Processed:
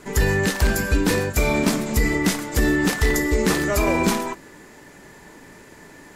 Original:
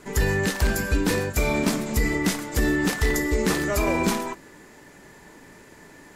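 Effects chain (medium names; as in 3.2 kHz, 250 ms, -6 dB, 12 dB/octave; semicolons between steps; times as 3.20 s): trim +3 dB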